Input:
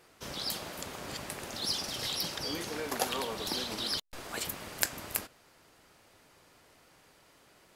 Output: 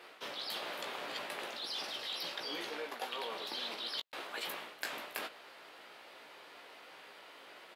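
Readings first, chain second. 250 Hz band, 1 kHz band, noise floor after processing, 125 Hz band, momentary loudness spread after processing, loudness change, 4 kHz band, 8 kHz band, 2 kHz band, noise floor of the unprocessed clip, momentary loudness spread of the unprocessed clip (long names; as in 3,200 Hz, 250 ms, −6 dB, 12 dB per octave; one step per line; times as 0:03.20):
−10.0 dB, −3.0 dB, −55 dBFS, −19.5 dB, 15 LU, −5.5 dB, −4.0 dB, −14.0 dB, −1.5 dB, −62 dBFS, 8 LU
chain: high-pass filter 420 Hz 12 dB per octave
high shelf with overshoot 4,800 Hz −9.5 dB, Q 1.5
reversed playback
downward compressor 6 to 1, threshold −47 dBFS, peak gain reduction 21 dB
reversed playback
double-tracking delay 17 ms −6.5 dB
level +7.5 dB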